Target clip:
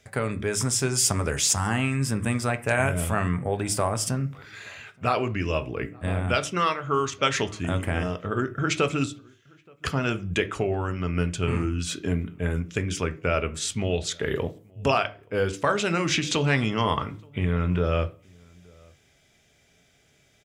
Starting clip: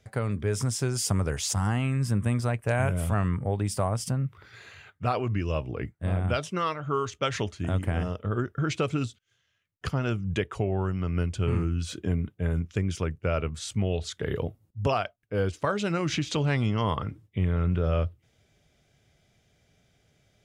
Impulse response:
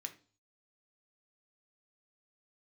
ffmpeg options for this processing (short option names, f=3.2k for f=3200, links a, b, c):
-filter_complex "[0:a]asplit=2[a][b];[b]adelay=874.6,volume=-28dB,highshelf=f=4k:g=-19.7[c];[a][c]amix=inputs=2:normalize=0,asplit=2[d][e];[1:a]atrim=start_sample=2205,lowshelf=f=150:g=-7[f];[e][f]afir=irnorm=-1:irlink=0,volume=5.5dB[g];[d][g]amix=inputs=2:normalize=0"